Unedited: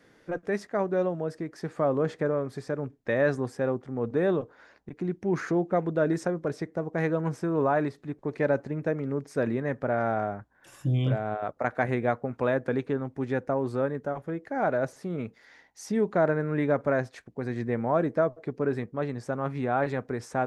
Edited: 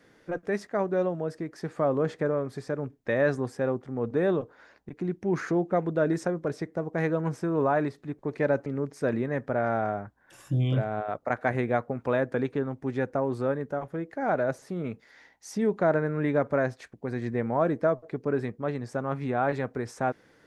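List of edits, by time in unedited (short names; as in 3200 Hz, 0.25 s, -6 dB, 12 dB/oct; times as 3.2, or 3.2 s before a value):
8.66–9 cut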